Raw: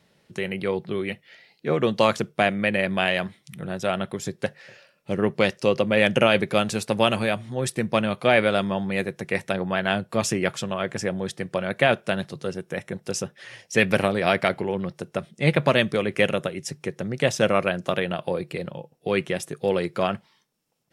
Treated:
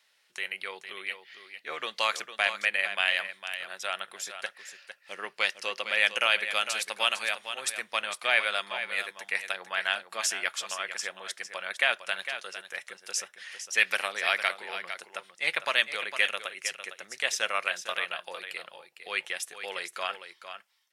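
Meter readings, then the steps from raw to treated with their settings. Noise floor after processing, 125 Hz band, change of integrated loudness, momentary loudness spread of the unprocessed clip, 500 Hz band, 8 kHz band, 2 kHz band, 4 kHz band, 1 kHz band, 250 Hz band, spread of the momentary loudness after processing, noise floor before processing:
-65 dBFS, under -35 dB, -5.0 dB, 12 LU, -16.0 dB, +0.5 dB, -0.5 dB, +0.5 dB, -6.5 dB, -29.5 dB, 15 LU, -65 dBFS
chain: high-pass 1.4 kHz 12 dB/octave; delay 455 ms -10 dB

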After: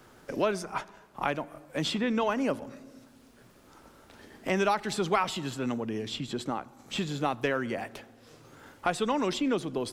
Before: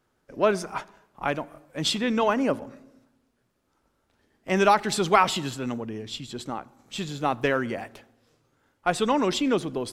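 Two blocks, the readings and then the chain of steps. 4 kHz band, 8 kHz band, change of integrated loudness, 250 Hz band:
-5.0 dB, -6.0 dB, -5.0 dB, -3.0 dB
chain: three bands compressed up and down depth 70%; trim -4.5 dB

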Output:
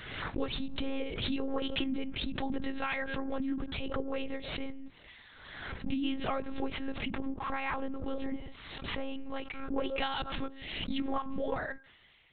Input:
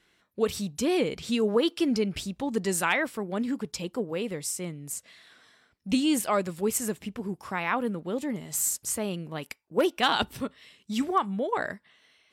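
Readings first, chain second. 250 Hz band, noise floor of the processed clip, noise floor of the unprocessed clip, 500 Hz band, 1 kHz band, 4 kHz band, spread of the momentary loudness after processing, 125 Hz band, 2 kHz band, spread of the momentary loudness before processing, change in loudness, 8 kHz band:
-6.5 dB, -58 dBFS, -68 dBFS, -9.5 dB, -7.5 dB, -5.0 dB, 9 LU, -6.0 dB, -6.0 dB, 11 LU, -7.5 dB, under -40 dB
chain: de-hum 266.5 Hz, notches 6; compression 6:1, threshold -30 dBFS, peak gain reduction 11 dB; monotone LPC vocoder at 8 kHz 270 Hz; swell ahead of each attack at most 45 dB/s

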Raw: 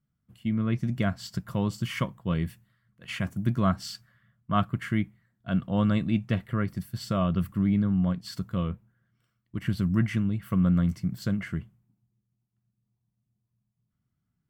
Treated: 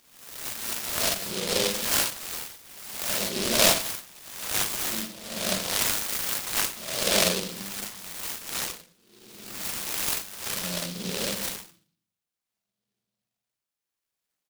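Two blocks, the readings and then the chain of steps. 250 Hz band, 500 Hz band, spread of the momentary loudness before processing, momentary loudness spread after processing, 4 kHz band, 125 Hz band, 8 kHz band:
-11.5 dB, +4.0 dB, 11 LU, 14 LU, +15.0 dB, -15.5 dB, no reading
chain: reverse spectral sustain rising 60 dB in 1.05 s; doubling 40 ms -2 dB; LFO high-pass sine 0.52 Hz 450–2300 Hz; dynamic bell 820 Hz, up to -5 dB, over -41 dBFS, Q 2.7; delay 90 ms -21 dB; simulated room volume 400 m³, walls furnished, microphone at 1.3 m; delay time shaken by noise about 3.8 kHz, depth 0.32 ms

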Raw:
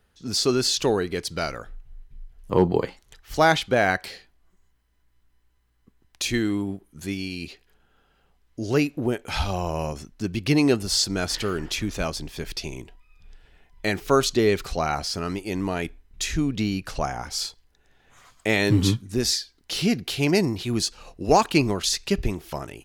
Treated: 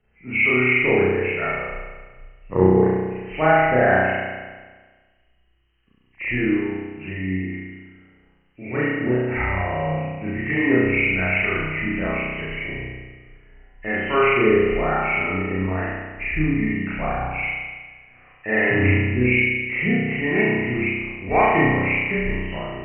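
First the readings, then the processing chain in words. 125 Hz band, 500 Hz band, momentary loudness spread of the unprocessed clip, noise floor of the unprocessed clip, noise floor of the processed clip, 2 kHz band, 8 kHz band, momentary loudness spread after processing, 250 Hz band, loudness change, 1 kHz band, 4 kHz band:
+3.0 dB, +4.0 dB, 13 LU, -65 dBFS, -61 dBFS, +9.5 dB, under -40 dB, 14 LU, +2.5 dB, +3.5 dB, +3.5 dB, -10.5 dB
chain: knee-point frequency compression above 1.7 kHz 4:1; harmonic tremolo 1.1 Hz, depth 50%, crossover 790 Hz; spring tank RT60 1.4 s, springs 32 ms, chirp 55 ms, DRR -8.5 dB; trim -4 dB

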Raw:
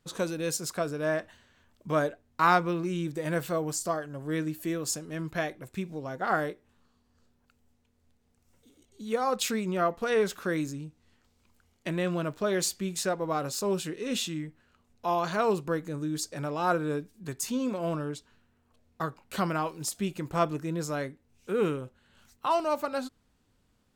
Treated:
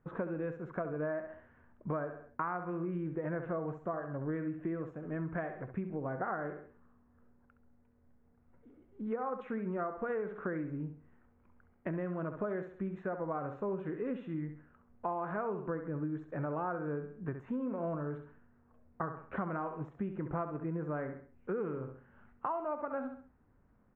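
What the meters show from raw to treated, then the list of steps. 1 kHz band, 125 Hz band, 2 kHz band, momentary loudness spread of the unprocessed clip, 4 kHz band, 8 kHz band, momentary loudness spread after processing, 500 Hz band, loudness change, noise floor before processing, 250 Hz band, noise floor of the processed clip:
-9.0 dB, -4.5 dB, -10.5 dB, 9 LU, under -30 dB, under -40 dB, 6 LU, -7.5 dB, -8.0 dB, -70 dBFS, -5.5 dB, -67 dBFS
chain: feedback delay 67 ms, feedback 34%, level -10 dB; compression 12:1, threshold -34 dBFS, peak gain reduction 17.5 dB; inverse Chebyshev low-pass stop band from 4.4 kHz, stop band 50 dB; trim +1.5 dB

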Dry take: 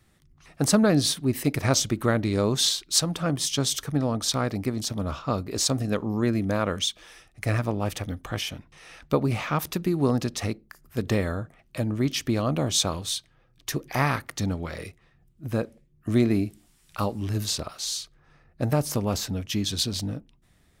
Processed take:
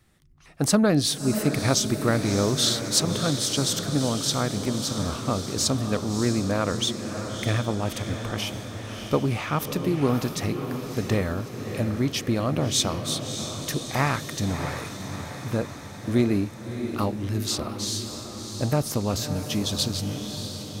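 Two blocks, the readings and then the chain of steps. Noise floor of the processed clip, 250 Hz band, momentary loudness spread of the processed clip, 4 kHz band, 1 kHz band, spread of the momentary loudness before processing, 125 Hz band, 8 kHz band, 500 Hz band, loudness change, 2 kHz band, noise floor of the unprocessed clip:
-38 dBFS, +1.0 dB, 9 LU, +1.0 dB, +1.0 dB, 11 LU, +1.0 dB, +1.0 dB, +1.0 dB, +0.5 dB, +1.0 dB, -62 dBFS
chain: echo that smears into a reverb 632 ms, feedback 62%, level -8 dB

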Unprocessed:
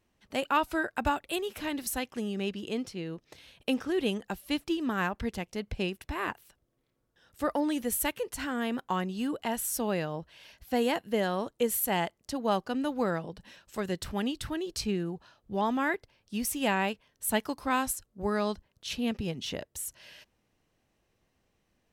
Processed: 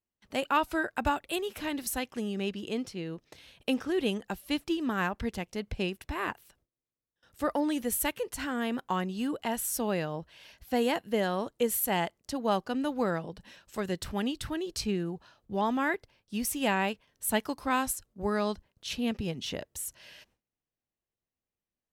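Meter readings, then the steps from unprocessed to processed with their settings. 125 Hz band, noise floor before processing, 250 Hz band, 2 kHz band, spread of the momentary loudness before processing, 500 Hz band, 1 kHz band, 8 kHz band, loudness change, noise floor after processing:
0.0 dB, -76 dBFS, 0.0 dB, 0.0 dB, 10 LU, 0.0 dB, 0.0 dB, 0.0 dB, 0.0 dB, under -85 dBFS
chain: gate with hold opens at -54 dBFS

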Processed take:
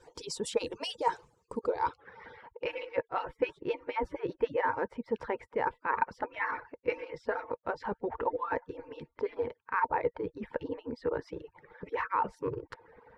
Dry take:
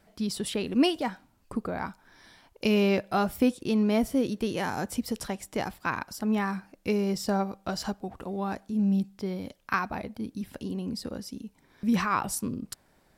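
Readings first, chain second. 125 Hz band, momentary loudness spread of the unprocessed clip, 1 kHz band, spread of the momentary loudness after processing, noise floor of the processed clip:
-14.5 dB, 12 LU, +0.5 dB, 14 LU, -75 dBFS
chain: harmonic-percussive separation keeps percussive; reverse; compression 6:1, threshold -41 dBFS, peak gain reduction 18 dB; reverse; small resonant body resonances 480/910 Hz, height 17 dB, ringing for 35 ms; low-pass sweep 7.2 kHz -> 1.9 kHz, 1.60–2.13 s; trim +3 dB

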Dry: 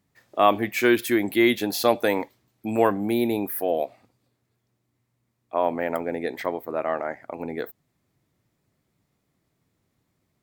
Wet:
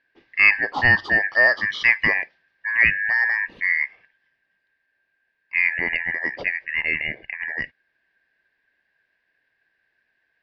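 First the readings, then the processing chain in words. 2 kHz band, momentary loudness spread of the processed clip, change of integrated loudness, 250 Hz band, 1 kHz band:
+14.5 dB, 13 LU, +4.5 dB, -14.0 dB, -7.0 dB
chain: four frequency bands reordered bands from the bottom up 2143; steep low-pass 4.4 kHz 36 dB/octave; trim +2.5 dB

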